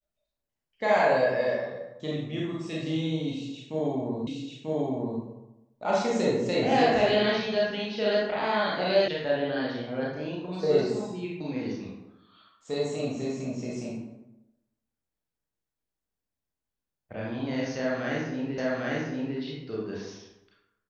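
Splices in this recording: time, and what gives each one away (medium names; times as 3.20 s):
4.27 s: repeat of the last 0.94 s
9.08 s: sound stops dead
18.58 s: repeat of the last 0.8 s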